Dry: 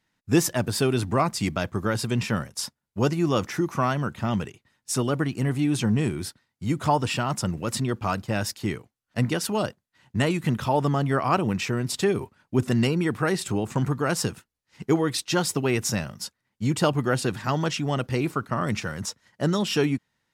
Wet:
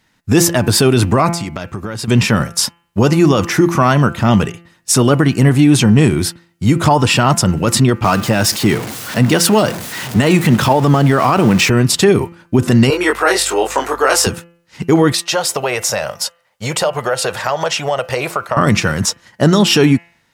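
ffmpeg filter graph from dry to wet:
-filter_complex "[0:a]asettb=1/sr,asplit=3[a][b][c];[a]atrim=end=1.294[d];[b]atrim=start=1.29:end=2.08,asetpts=PTS-STARTPTS,afade=t=in:d=0.004:c=qsin,afade=t=out:st=0.786:d=0.004:c=qsin,equalizer=f=12k:w=1.8:g=-3,acompressor=threshold=-36dB:ratio=6:attack=3.2:release=140:knee=1:detection=peak[e];[c]atrim=start=2.076[f];[d][e]acrossfade=d=0.004:c1=hsin:c2=qsin[g];[g][f]acrossfade=d=0.004:c1=qsin:c2=hsin,asettb=1/sr,asplit=3[h][i][j];[h]atrim=end=8.044[k];[i]atrim=start=8.04:end=11.7,asetpts=PTS-STARTPTS,afade=t=in:d=0.004:c=qsin,afade=t=out:st=3.656:d=0.004:c=qsin,aeval=exprs='val(0)+0.5*0.0188*sgn(val(0))':c=same,highpass=110[l];[j]atrim=start=11.696[m];[k][l]acrossfade=d=0.004:c1=hsin:c2=qsin[n];[n][m]acrossfade=d=0.004:c1=qsin:c2=hsin,asettb=1/sr,asplit=3[o][p][q];[o]atrim=end=12.904[r];[p]atrim=start=12.9:end=14.27,asetpts=PTS-STARTPTS,afade=t=in:d=0.004:c=qsin,afade=t=out:st=1.366:d=0.004:c=qsin,highpass=f=430:w=0.5412,highpass=f=430:w=1.3066,aeval=exprs='val(0)+0.00126*(sin(2*PI*50*n/s)+sin(2*PI*2*50*n/s)/2+sin(2*PI*3*50*n/s)/3+sin(2*PI*4*50*n/s)/4+sin(2*PI*5*50*n/s)/5)':c=same,asplit=2[s][t];[t]adelay=22,volume=-3dB[u];[s][u]amix=inputs=2:normalize=0,atrim=end_sample=60417[v];[q]atrim=start=14.266[w];[r][v]acrossfade=d=0.004:c1=hsin:c2=qsin[x];[x][w]acrossfade=d=0.004:c1=qsin:c2=hsin,asettb=1/sr,asplit=3[y][z][aa];[y]atrim=end=15.124[ab];[z]atrim=start=15.12:end=18.57,asetpts=PTS-STARTPTS,afade=t=in:d=0.004:c=qsin,afade=t=out:st=3.446:d=0.004:c=qsin,lowshelf=f=400:t=q:w=3:g=-11.5,acompressor=threshold=-29dB:ratio=4:attack=3.2:release=140:knee=1:detection=peak[ac];[aa]atrim=start=18.566[ad];[ab][ac]acrossfade=d=0.004:c1=hsin:c2=qsin[ae];[ae][ad]acrossfade=d=0.004:c1=qsin:c2=hsin,bandreject=f=170.4:t=h:w=4,bandreject=f=340.8:t=h:w=4,bandreject=f=511.2:t=h:w=4,bandreject=f=681.6:t=h:w=4,bandreject=f=852:t=h:w=4,bandreject=f=1.0224k:t=h:w=4,bandreject=f=1.1928k:t=h:w=4,bandreject=f=1.3632k:t=h:w=4,bandreject=f=1.5336k:t=h:w=4,bandreject=f=1.704k:t=h:w=4,bandreject=f=1.8744k:t=h:w=4,bandreject=f=2.0448k:t=h:w=4,bandreject=f=2.2152k:t=h:w=4,bandreject=f=2.3856k:t=h:w=4,bandreject=f=2.556k:t=h:w=4,bandreject=f=2.7264k:t=h:w=4,bandreject=f=2.8968k:t=h:w=4,bandreject=f=3.0672k:t=h:w=4,alimiter=level_in=16.5dB:limit=-1dB:release=50:level=0:latency=1,volume=-1dB"

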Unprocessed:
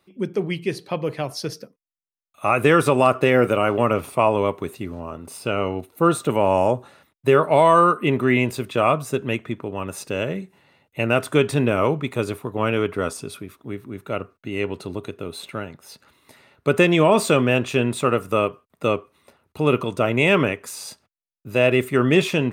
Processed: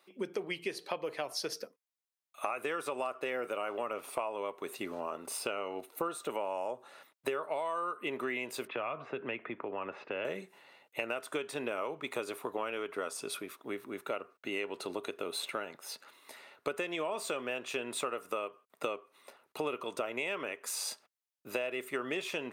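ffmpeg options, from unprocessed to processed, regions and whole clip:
-filter_complex "[0:a]asettb=1/sr,asplit=3[a][b][c];[a]atrim=end=8.674[d];[b]atrim=start=8.67:end=10.25,asetpts=PTS-STARTPTS,afade=t=in:d=0.004:c=qsin,afade=t=out:st=1.576:d=0.004:c=qsin,lowpass=f=2.5k:w=0.5412,lowpass=f=2.5k:w=1.3066,acrossover=split=150|3000[e][f][g];[f]acompressor=threshold=-30dB:ratio=3:attack=3.2:release=140:knee=2.83:detection=peak[h];[e][h][g]amix=inputs=3:normalize=0[i];[c]atrim=start=10.246[j];[d][i]acrossfade=d=0.004:c1=hsin:c2=qsin[k];[k][j]acrossfade=d=0.004:c1=qsin:c2=hsin,highpass=450,acompressor=threshold=-32dB:ratio=12"

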